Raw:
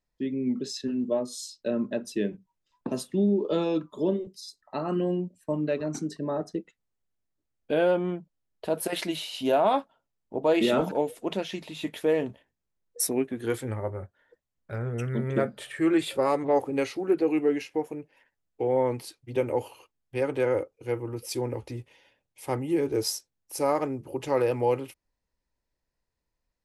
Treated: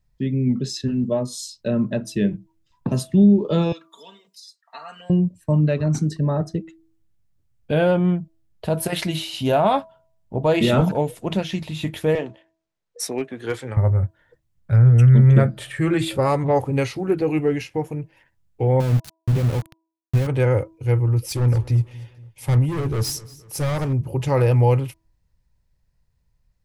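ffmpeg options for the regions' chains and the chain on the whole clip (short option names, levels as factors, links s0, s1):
-filter_complex "[0:a]asettb=1/sr,asplit=3[s0][s1][s2];[s0]atrim=end=3.724[s3];[s1]atrim=start=3.72:end=5.1,asetpts=PTS-STARTPTS,afade=t=in:d=0.004:c=qsin,afade=t=out:st=1.376:d=0.004:c=qsin,aecho=1:1:4.3:0.91,atrim=end_sample=60858,acrossover=split=1900|5700[s4][s5][s6];[s4]acompressor=threshold=0.0398:ratio=4[s7];[s5]acompressor=threshold=0.00224:ratio=4[s8];[s6]acompressor=threshold=0.00112:ratio=4[s9];[s7][s8][s9]amix=inputs=3:normalize=0,highpass=1400[s10];[s2]atrim=start=5.096[s11];[s3][s10]acrossfade=d=0.004:c1=hsin:c2=qsin[s12];[s12][s11]acrossfade=d=0.004:c1=qsin:c2=hsin,asettb=1/sr,asplit=3[s13][s14][s15];[s13]atrim=end=12.154[s16];[s14]atrim=start=12.15:end=13.77,asetpts=PTS-STARTPTS,afade=t=in:d=0.004:c=qsin,afade=t=out:st=1.616:d=0.004:c=qsin,acrossover=split=280 7200:gain=0.0794 1 0.178[s17][s18][s19];[s17][s18][s19]amix=inputs=3:normalize=0,asoftclip=type=hard:threshold=0.0891[s20];[s15]atrim=start=13.766[s21];[s16][s20]acrossfade=d=0.004:c1=hsin:c2=qsin[s22];[s22][s21]acrossfade=d=0.004:c1=qsin:c2=hsin,asettb=1/sr,asplit=3[s23][s24][s25];[s23]atrim=end=18.804[s26];[s24]atrim=start=18.8:end=20.27,asetpts=PTS-STARTPTS,afade=t=in:d=0.004:c=qsin,afade=t=out:st=1.466:d=0.004:c=qsin,equalizer=f=180:t=o:w=1.9:g=15,acompressor=threshold=0.0251:ratio=3:attack=3.2:release=140:knee=1:detection=peak,aeval=exprs='val(0)*gte(abs(val(0)),0.0188)':c=same[s27];[s25]atrim=start=20.266[s28];[s26][s27]acrossfade=d=0.004:c1=hsin:c2=qsin[s29];[s29][s28]acrossfade=d=0.004:c1=qsin:c2=hsin,asettb=1/sr,asplit=3[s30][s31][s32];[s30]atrim=end=21.244[s33];[s31]atrim=start=21.24:end=23.93,asetpts=PTS-STARTPTS,afade=t=in:d=0.004:c=qsin,afade=t=out:st=2.686:d=0.004:c=qsin,asoftclip=type=hard:threshold=0.0355,aecho=1:1:236|472|708:0.1|0.046|0.0212,atrim=end_sample=118629[s34];[s32]atrim=start=23.926[s35];[s33][s34]acrossfade=d=0.004:c1=hsin:c2=qsin[s36];[s36][s35]acrossfade=d=0.004:c1=qsin:c2=hsin,lowshelf=f=200:t=q:w=1.5:g=12.5,bandreject=f=325.5:t=h:w=4,bandreject=f=651:t=h:w=4,bandreject=f=976.5:t=h:w=4,volume=1.88"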